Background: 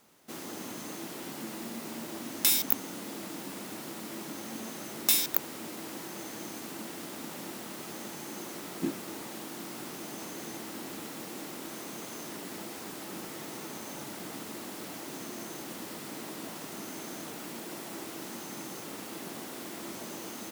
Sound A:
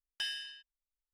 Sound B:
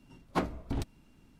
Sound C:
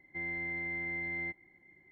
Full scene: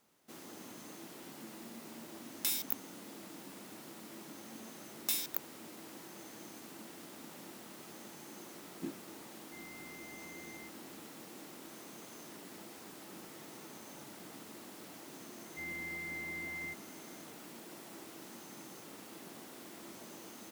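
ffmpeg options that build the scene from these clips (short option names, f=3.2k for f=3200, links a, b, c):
-filter_complex "[3:a]asplit=2[a][b];[0:a]volume=-9.5dB[c];[b]equalizer=f=590:w=1.7:g=-7[d];[a]atrim=end=1.91,asetpts=PTS-STARTPTS,volume=-16.5dB,afade=t=in:d=0.004:c=hsin,afade=t=out:st=1.906:d=0.004:c=hsin,adelay=9370[e];[d]atrim=end=1.91,asetpts=PTS-STARTPTS,volume=-5dB,afade=t=in:d=0.004:c=hsin,afade=t=out:st=1.906:d=0.004:c=hsin,adelay=15420[f];[c][e][f]amix=inputs=3:normalize=0"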